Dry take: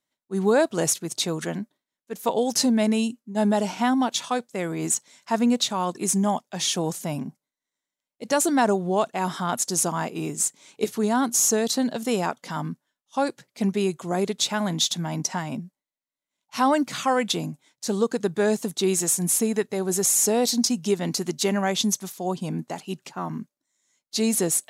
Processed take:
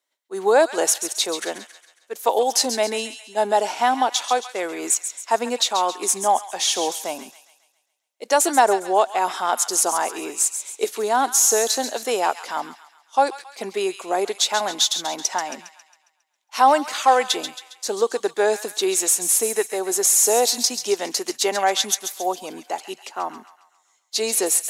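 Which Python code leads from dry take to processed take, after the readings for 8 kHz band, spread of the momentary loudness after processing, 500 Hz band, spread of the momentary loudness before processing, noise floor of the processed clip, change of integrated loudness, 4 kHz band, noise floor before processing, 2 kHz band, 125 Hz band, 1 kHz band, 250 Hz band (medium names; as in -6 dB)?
+4.5 dB, 13 LU, +3.5 dB, 11 LU, -67 dBFS, +3.5 dB, +4.5 dB, under -85 dBFS, +4.5 dB, under -15 dB, +7.5 dB, -8.0 dB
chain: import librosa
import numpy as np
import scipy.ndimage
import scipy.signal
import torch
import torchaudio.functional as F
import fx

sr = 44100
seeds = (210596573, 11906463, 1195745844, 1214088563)

y = scipy.signal.sosfilt(scipy.signal.butter(4, 370.0, 'highpass', fs=sr, output='sos'), x)
y = fx.dynamic_eq(y, sr, hz=800.0, q=5.3, threshold_db=-41.0, ratio=4.0, max_db=6)
y = fx.echo_wet_highpass(y, sr, ms=136, feedback_pct=47, hz=1500.0, wet_db=-9.0)
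y = y * 10.0 ** (4.0 / 20.0)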